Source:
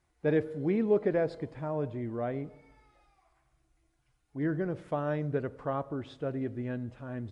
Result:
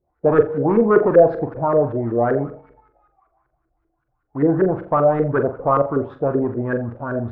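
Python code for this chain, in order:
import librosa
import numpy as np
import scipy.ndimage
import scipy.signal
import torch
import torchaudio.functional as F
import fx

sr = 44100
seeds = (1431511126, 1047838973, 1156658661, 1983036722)

y = fx.leveller(x, sr, passes=2)
y = fx.filter_lfo_lowpass(y, sr, shape='saw_up', hz=5.2, low_hz=410.0, high_hz=1600.0, q=5.1)
y = fx.room_flutter(y, sr, wall_m=7.3, rt60_s=0.27)
y = F.gain(torch.from_numpy(y), 3.5).numpy()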